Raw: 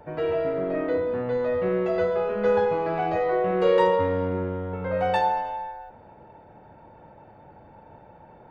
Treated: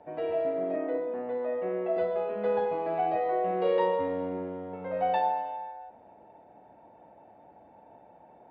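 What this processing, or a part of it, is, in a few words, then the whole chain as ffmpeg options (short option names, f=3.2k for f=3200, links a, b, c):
guitar cabinet: -filter_complex "[0:a]highpass=86,equalizer=f=94:t=q:w=4:g=-9,equalizer=f=140:t=q:w=4:g=-9,equalizer=f=280:t=q:w=4:g=4,equalizer=f=700:t=q:w=4:g=9,equalizer=f=1.4k:t=q:w=4:g=-6,lowpass=f=4k:w=0.5412,lowpass=f=4k:w=1.3066,asettb=1/sr,asplit=3[a][b][c];[a]atrim=end=0.764[d];[b]atrim=start=0.76:end=1.97,asetpts=PTS-STARTPTS,afade=t=in:d=0.004:c=qsin,afade=t=out:st=1.206:d=0.004:c=qsin,acrossover=split=180 3100:gain=0.158 1 0.141[e][f][g];[e][f][g]amix=inputs=3:normalize=0[h];[c]atrim=start=1.966[i];[d][h]acrossfade=d=0.004:c1=hsin:c2=qsin[j];[j][i]acrossfade=d=0.004:c1=qsin:c2=hsin,volume=-7.5dB"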